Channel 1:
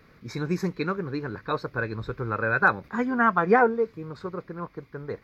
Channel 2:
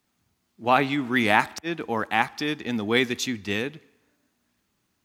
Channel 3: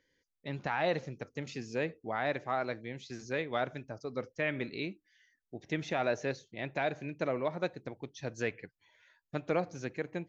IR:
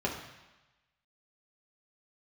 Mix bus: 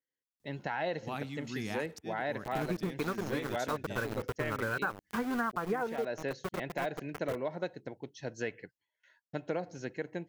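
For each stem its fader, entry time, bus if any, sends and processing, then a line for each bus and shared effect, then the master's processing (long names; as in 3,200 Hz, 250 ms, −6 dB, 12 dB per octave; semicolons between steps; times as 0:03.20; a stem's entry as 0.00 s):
−1.5 dB, 2.20 s, no send, centre clipping without the shift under −29.5 dBFS; parametric band 5,400 Hz −5 dB 2.4 octaves
−10.0 dB, 0.40 s, no send, bass and treble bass +14 dB, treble +10 dB; automatic ducking −11 dB, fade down 0.85 s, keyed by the third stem
0.0 dB, 0.00 s, no send, notch comb filter 1,200 Hz; noise gate with hold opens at −54 dBFS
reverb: not used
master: downward compressor 16 to 1, threshold −29 dBFS, peak gain reduction 15.5 dB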